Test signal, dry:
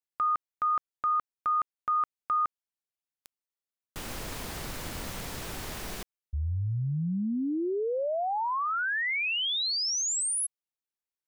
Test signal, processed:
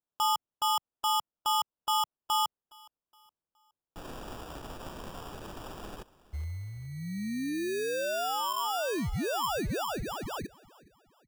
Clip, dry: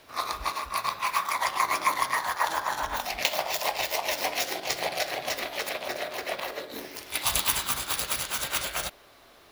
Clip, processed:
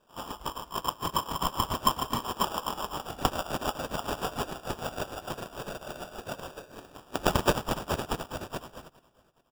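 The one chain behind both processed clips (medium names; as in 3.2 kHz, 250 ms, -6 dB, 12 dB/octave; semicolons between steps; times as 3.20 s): fade out at the end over 1.55 s; ten-band graphic EQ 125 Hz -7 dB, 8 kHz -4 dB, 16 kHz +7 dB; sample-and-hold 21×; on a send: feedback delay 417 ms, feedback 39%, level -17 dB; on the sum: upward expansion 1.5:1, over -43 dBFS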